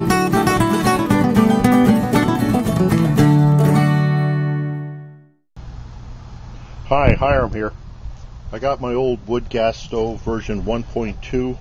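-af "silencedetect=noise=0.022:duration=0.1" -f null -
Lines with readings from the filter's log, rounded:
silence_start: 5.09
silence_end: 5.57 | silence_duration: 0.47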